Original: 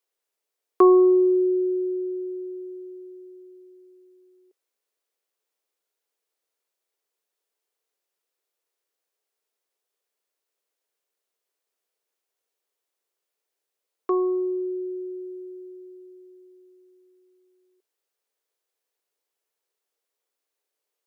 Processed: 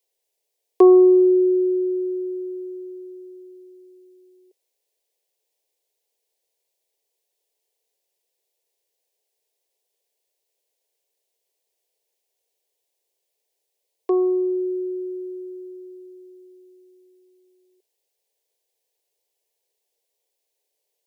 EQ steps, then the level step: static phaser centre 540 Hz, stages 4; +6.5 dB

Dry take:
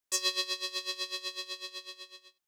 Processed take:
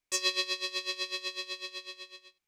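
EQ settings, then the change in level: tilt EQ -2 dB/octave; peaking EQ 2.3 kHz +10.5 dB 0.29 oct; peaking EQ 5.2 kHz +4.5 dB 2.5 oct; 0.0 dB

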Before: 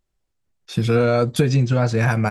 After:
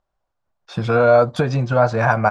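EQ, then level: low-pass 5.6 kHz 12 dB/octave; high-order bell 900 Hz +12.5 dB; band-stop 1.3 kHz, Q 17; -3.0 dB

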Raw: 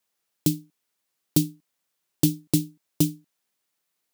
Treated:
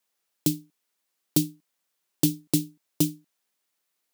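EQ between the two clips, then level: high-pass 180 Hz 6 dB/octave; 0.0 dB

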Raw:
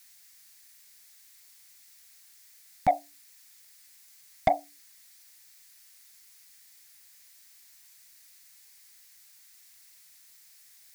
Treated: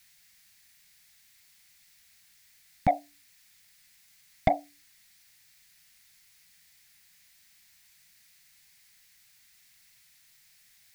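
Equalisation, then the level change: tone controls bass +2 dB, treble -11 dB; peaking EQ 1 kHz -8 dB 1.8 oct; +5.0 dB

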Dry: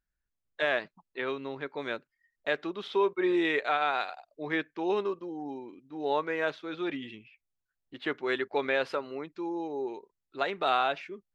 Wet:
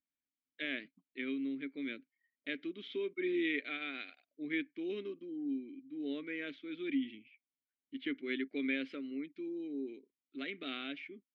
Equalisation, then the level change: vowel filter i; +6.0 dB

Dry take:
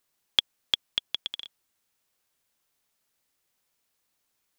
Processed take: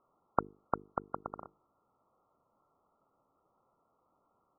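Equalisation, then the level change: brick-wall FIR low-pass 1.4 kHz; bass shelf 77 Hz -11 dB; hum notches 50/100/150/200/250/300/350/400/450 Hz; +14.0 dB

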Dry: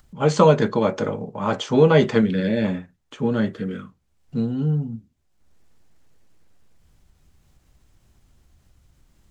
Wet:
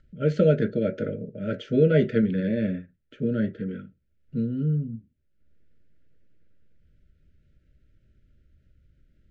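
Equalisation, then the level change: brick-wall FIR band-stop 650–1300 Hz; low-pass 2.7 kHz 12 dB/octave; bass shelf 450 Hz +4.5 dB; -7.0 dB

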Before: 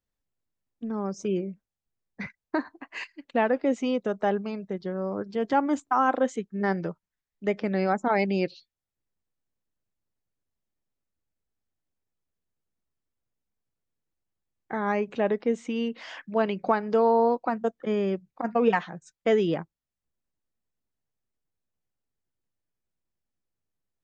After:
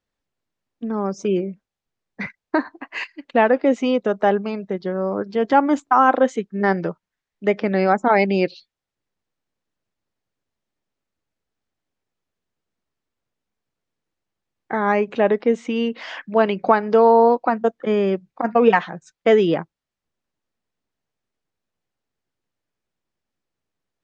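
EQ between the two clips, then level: distance through air 79 m; bass shelf 150 Hz -9 dB; +9.0 dB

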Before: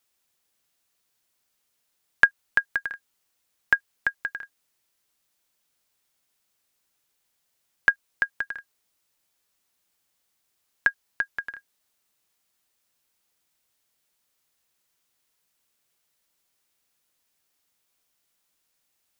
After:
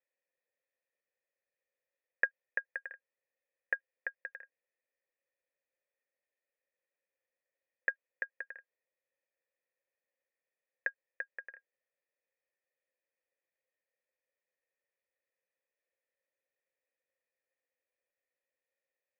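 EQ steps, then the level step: cascade formant filter e; high-pass 340 Hz; +3.0 dB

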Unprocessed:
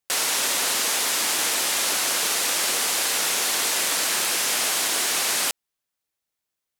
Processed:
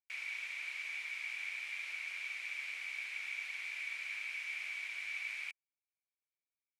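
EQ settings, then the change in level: band-pass filter 2.3 kHz, Q 18; -1.5 dB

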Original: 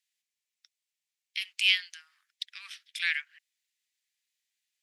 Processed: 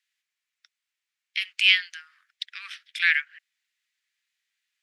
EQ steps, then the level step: resonant high-pass 1.4 kHz, resonance Q 1.8; treble shelf 4.9 kHz -10.5 dB; +6.0 dB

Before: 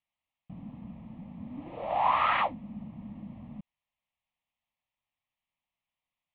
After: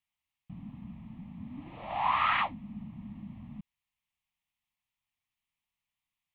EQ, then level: peaking EQ 510 Hz -15 dB 1.1 oct; +1.5 dB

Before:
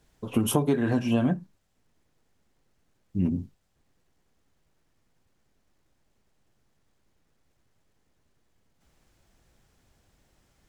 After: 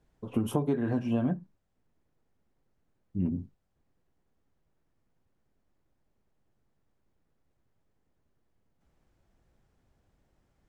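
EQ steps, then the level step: treble shelf 2.1 kHz -11.5 dB; -4.0 dB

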